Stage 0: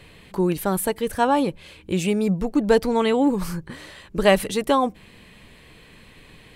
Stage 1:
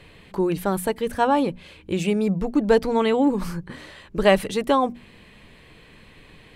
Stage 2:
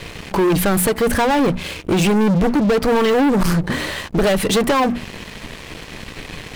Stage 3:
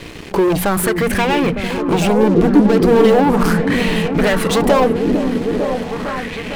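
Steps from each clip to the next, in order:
high-shelf EQ 6,400 Hz −8 dB; mains-hum notches 60/120/180/240 Hz
downward compressor 12 to 1, threshold −21 dBFS, peak gain reduction 11.5 dB; leveller curve on the samples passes 5
echo whose low-pass opens from repeat to repeat 453 ms, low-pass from 400 Hz, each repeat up 1 octave, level −3 dB; auto-filter bell 0.38 Hz 290–2,600 Hz +9 dB; level −1.5 dB

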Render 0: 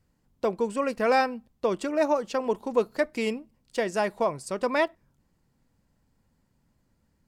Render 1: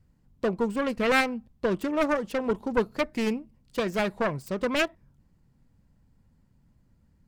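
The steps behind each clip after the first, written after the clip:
phase distortion by the signal itself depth 0.4 ms
bass and treble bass +9 dB, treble −3 dB
level −1 dB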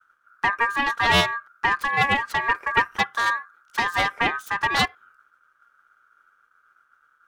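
downward expander −58 dBFS
ring modulation 1,400 Hz
level +7 dB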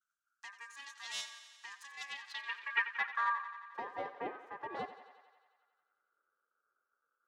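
band-pass filter sweep 6,900 Hz → 470 Hz, 0:01.95–0:03.90
feedback echo with a high-pass in the loop 89 ms, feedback 72%, high-pass 310 Hz, level −12.5 dB
level −7.5 dB

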